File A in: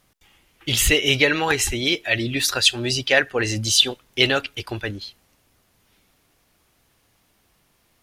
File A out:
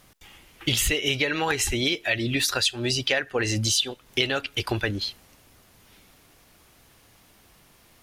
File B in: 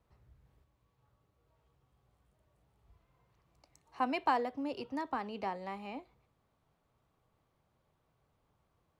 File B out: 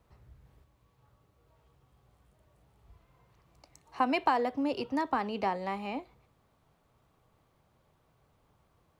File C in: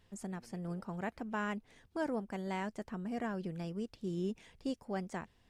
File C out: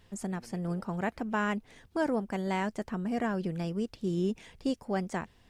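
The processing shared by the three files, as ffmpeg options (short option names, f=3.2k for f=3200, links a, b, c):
-af "acompressor=threshold=-29dB:ratio=6,volume=7dB"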